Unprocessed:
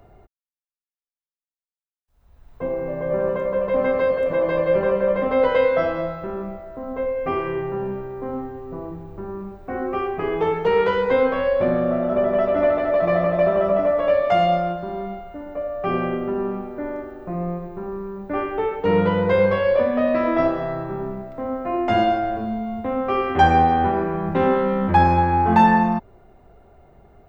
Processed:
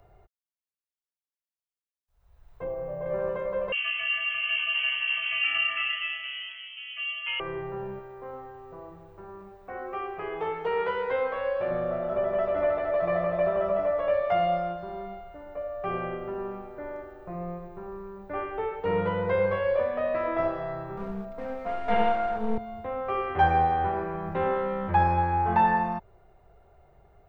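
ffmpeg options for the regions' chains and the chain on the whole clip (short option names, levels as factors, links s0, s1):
-filter_complex "[0:a]asettb=1/sr,asplit=3[s0][s1][s2];[s0]atrim=end=2.644[s3];[s1]atrim=start=2.64:end=3.06,asetpts=PTS-STARTPTS,afade=t=in:d=0.004:c=qsin,afade=t=out:st=0.416:d=0.004:c=qsin,equalizer=f=4200:w=0.33:g=-6.5,asplit=2[s4][s5];[s5]adelay=32,volume=0.562[s6];[s4][s6]amix=inputs=2:normalize=0,atrim=end_sample=18522[s7];[s2]atrim=start=3.056[s8];[s3][s7]acrossfade=d=0.004:c1=hsin:c2=qsin[s9];[s9][s8]acrossfade=d=0.004:c1=qsin:c2=hsin,asettb=1/sr,asplit=3[s10][s11][s12];[s10]atrim=end=3.724[s13];[s11]atrim=start=3.72:end=7.4,asetpts=PTS-STARTPTS,afade=t=in:d=0.004:c=qsin,afade=t=out:st=3.676:d=0.004:c=qsin,aecho=1:1:131|250:0.376|0.562,atrim=end_sample=162288,lowpass=f=2800:t=q:w=0.5098,lowpass=f=2800:t=q:w=0.6013,lowpass=f=2800:t=q:w=0.9,lowpass=f=2800:t=q:w=2.563,afreqshift=-3300[s14];[s12]atrim=start=7.396[s15];[s13][s14]acrossfade=d=0.004:c1=hsin:c2=qsin[s16];[s16][s15]acrossfade=d=0.004:c1=qsin:c2=hsin,asettb=1/sr,asplit=3[s17][s18][s19];[s17]atrim=end=7.994[s20];[s18]atrim=start=7.99:end=11.71,asetpts=PTS-STARTPTS,afade=t=in:d=0.004:c=qsin,afade=t=out:st=3.716:d=0.004:c=qsin,lowshelf=f=280:g=-9,aecho=1:1:238:0.211,atrim=end_sample=164052[s21];[s19]atrim=start=11.706[s22];[s20][s21]acrossfade=d=0.004:c1=hsin:c2=qsin[s23];[s23][s22]acrossfade=d=0.004:c1=qsin:c2=hsin,asettb=1/sr,asplit=3[s24][s25][s26];[s24]atrim=end=20.974[s27];[s25]atrim=start=20.97:end=22.58,asetpts=PTS-STARTPTS,afade=t=in:d=0.004:c=qsin,afade=t=out:st=1.606:d=0.004:c=qsin,equalizer=f=210:w=4:g=11.5,aeval=exprs='clip(val(0),-1,0.0398)':c=same,aecho=1:1:4.3:0.81,atrim=end_sample=71001[s28];[s26]atrim=start=22.576[s29];[s27][s28]acrossfade=d=0.004:c1=hsin:c2=qsin[s30];[s30][s29]acrossfade=d=0.004:c1=qsin:c2=hsin,acrossover=split=3100[s31][s32];[s32]acompressor=threshold=0.00141:ratio=4:attack=1:release=60[s33];[s31][s33]amix=inputs=2:normalize=0,equalizer=f=250:t=o:w=0.62:g=-14,volume=0.501"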